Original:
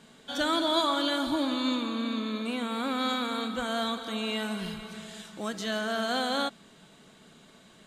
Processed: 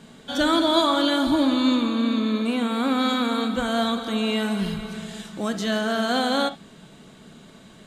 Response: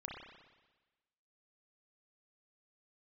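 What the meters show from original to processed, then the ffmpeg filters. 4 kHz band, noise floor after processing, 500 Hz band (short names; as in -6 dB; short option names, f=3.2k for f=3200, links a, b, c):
+4.5 dB, -49 dBFS, +7.0 dB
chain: -filter_complex "[0:a]lowshelf=f=380:g=7,asplit=2[a][b];[1:a]atrim=start_sample=2205,atrim=end_sample=3969[c];[b][c]afir=irnorm=-1:irlink=0,volume=-2.5dB[d];[a][d]amix=inputs=2:normalize=0,volume=1.5dB"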